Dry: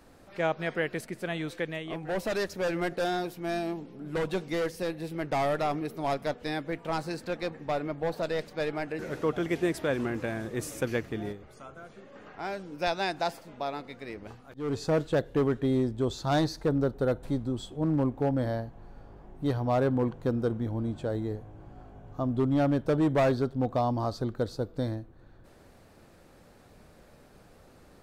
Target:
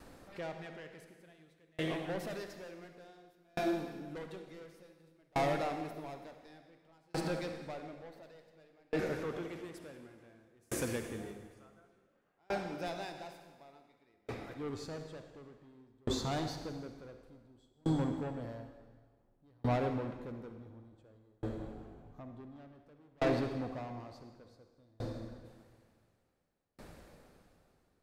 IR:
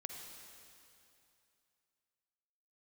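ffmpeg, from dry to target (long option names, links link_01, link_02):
-filter_complex "[0:a]asplit=2[link_01][link_02];[link_02]alimiter=level_in=2.5dB:limit=-24dB:level=0:latency=1,volume=-2.5dB,volume=0dB[link_03];[link_01][link_03]amix=inputs=2:normalize=0,asoftclip=type=tanh:threshold=-23.5dB[link_04];[1:a]atrim=start_sample=2205[link_05];[link_04][link_05]afir=irnorm=-1:irlink=0,aeval=exprs='val(0)*pow(10,-37*if(lt(mod(0.56*n/s,1),2*abs(0.56)/1000),1-mod(0.56*n/s,1)/(2*abs(0.56)/1000),(mod(0.56*n/s,1)-2*abs(0.56)/1000)/(1-2*abs(0.56)/1000))/20)':channel_layout=same,volume=1dB"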